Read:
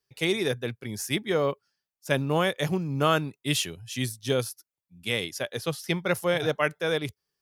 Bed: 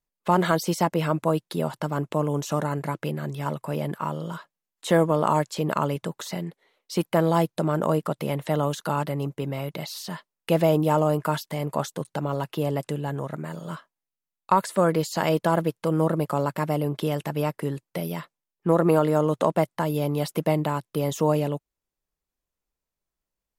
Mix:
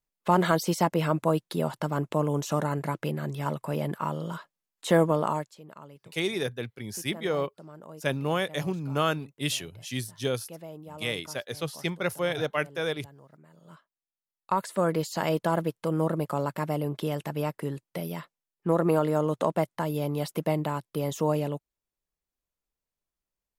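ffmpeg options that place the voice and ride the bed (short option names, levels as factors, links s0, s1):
-filter_complex "[0:a]adelay=5950,volume=0.708[s0];[1:a]volume=7.08,afade=t=out:st=5.08:d=0.49:silence=0.0891251,afade=t=in:st=13.52:d=1.43:silence=0.11885[s1];[s0][s1]amix=inputs=2:normalize=0"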